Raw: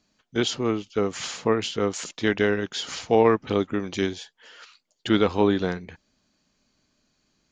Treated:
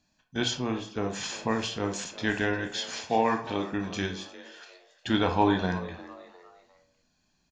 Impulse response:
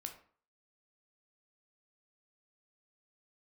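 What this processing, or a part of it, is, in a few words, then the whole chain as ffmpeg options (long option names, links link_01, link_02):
microphone above a desk: -filter_complex "[0:a]aecho=1:1:1.2:0.53[link_01];[1:a]atrim=start_sample=2205[link_02];[link_01][link_02]afir=irnorm=-1:irlink=0,asettb=1/sr,asplit=3[link_03][link_04][link_05];[link_03]atrim=end=2.794[link_06];[link_04]atrim=start=2.79:end=3.74,asetpts=PTS-STARTPTS,afade=type=in:duration=0.004:curve=qsin,afade=type=out:start_time=0.946:duration=0.004:curve=qsin,highpass=frequency=220:poles=1[link_07];[link_05]atrim=start=3.736[link_08];[link_06][link_07]acrossfade=duration=0.004:curve1=hsin:curve2=qsin[link_09];[link_09][link_08]acrossfade=duration=0.004:curve1=qsin:curve2=hsin,asettb=1/sr,asplit=3[link_10][link_11][link_12];[link_10]atrim=end=5.204[link_13];[link_11]atrim=start=5.2:end=5.66,asetpts=PTS-STARTPTS,afade=type=in:duration=0.004:curve=qsin,afade=type=out:start_time=0.456:duration=0.004:curve=qsin,equalizer=frequency=940:width_type=o:width=1.9:gain=4[link_14];[link_12]atrim=start=5.656[link_15];[link_13][link_14]acrossfade=duration=0.004:curve1=hsin:curve2=qsin[link_16];[link_16][link_15]acrossfade=duration=0.004:curve1=qsin:curve2=hsin,asplit=4[link_17][link_18][link_19][link_20];[link_18]adelay=353,afreqshift=130,volume=-17dB[link_21];[link_19]adelay=706,afreqshift=260,volume=-25.6dB[link_22];[link_20]adelay=1059,afreqshift=390,volume=-34.3dB[link_23];[link_17][link_21][link_22][link_23]amix=inputs=4:normalize=0"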